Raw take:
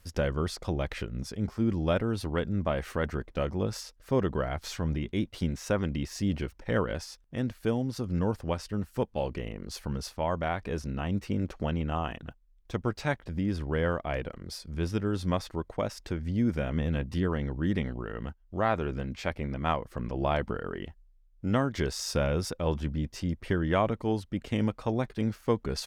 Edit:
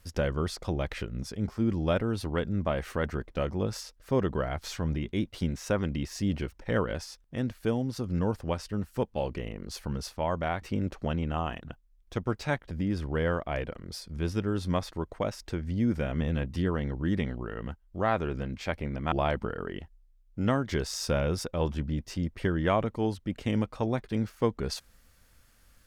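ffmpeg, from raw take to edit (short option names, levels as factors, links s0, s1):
-filter_complex "[0:a]asplit=3[s0][s1][s2];[s0]atrim=end=10.622[s3];[s1]atrim=start=11.198:end=19.702[s4];[s2]atrim=start=20.178[s5];[s3][s4]acrossfade=d=0.004:c1=hsin:c2=hsin[s6];[s6][s5]acrossfade=d=0.004:c1=hsin:c2=hsin"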